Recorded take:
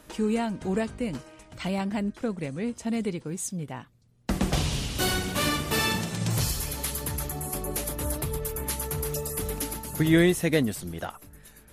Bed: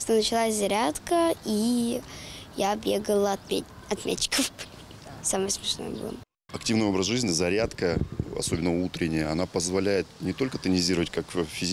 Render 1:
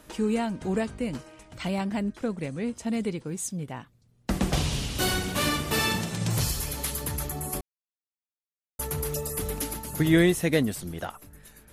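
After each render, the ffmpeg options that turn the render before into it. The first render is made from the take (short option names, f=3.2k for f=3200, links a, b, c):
-filter_complex "[0:a]asplit=3[a][b][c];[a]atrim=end=7.61,asetpts=PTS-STARTPTS,afade=t=out:st=7.606:d=0.004:c=hsin[d];[b]atrim=start=7.61:end=8.79,asetpts=PTS-STARTPTS,volume=0[e];[c]atrim=start=8.79,asetpts=PTS-STARTPTS,afade=t=in:d=0.004:c=hsin[f];[d][e][f]concat=n=3:v=0:a=1"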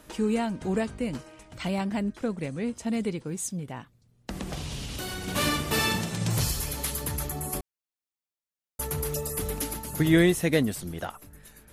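-filter_complex "[0:a]asettb=1/sr,asplit=3[a][b][c];[a]atrim=end=3.594[d];[b]atrim=start=3.59:end=5.28,asetpts=PTS-STARTPTS,afade=t=in:d=0.004:c=qsin,afade=t=out:st=1.686:d=0.004:c=qsin,acompressor=threshold=-31dB:ratio=6:attack=3.2:release=140:knee=1:detection=peak[e];[c]atrim=start=5.276[f];[d][e]acrossfade=d=0.004:c1=hsin:c2=qsin[g];[g][f]acrossfade=d=0.004:c1=qsin:c2=hsin"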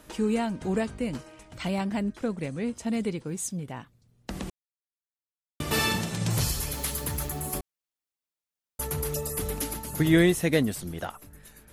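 -filter_complex "[0:a]asettb=1/sr,asplit=3[a][b][c];[a]atrim=end=6.724[d];[b]atrim=start=6.72:end=7.59,asetpts=PTS-STARTPTS,afade=t=in:d=0.004:c=qsin,afade=t=out:st=0.866:d=0.004:c=qsin,acrusher=bits=6:mix=0:aa=0.5[e];[c]atrim=start=7.586[f];[d][e]acrossfade=d=0.004:c1=hsin:c2=qsin[g];[g][f]acrossfade=d=0.004:c1=qsin:c2=hsin,asplit=3[h][i][j];[h]atrim=end=4.5,asetpts=PTS-STARTPTS,afade=t=out:st=4.496:d=0.004:c=hsin[k];[i]atrim=start=4.5:end=5.6,asetpts=PTS-STARTPTS,volume=0[l];[j]atrim=start=5.6,asetpts=PTS-STARTPTS,afade=t=in:d=0.004:c=hsin[m];[k][l][m]concat=n=3:v=0:a=1"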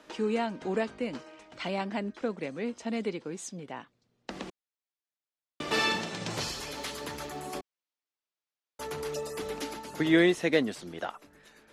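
-filter_complex "[0:a]acrossover=split=230 6400:gain=0.112 1 0.0708[a][b][c];[a][b][c]amix=inputs=3:normalize=0"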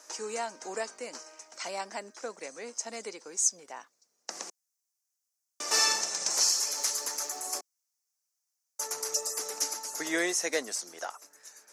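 -af "highpass=620,highshelf=f=4.5k:t=q:w=3:g=10.5"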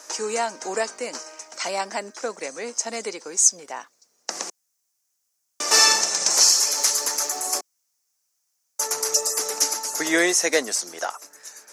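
-af "volume=9.5dB"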